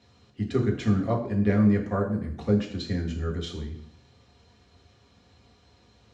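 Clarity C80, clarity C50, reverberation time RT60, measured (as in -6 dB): 12.0 dB, 8.5 dB, 0.70 s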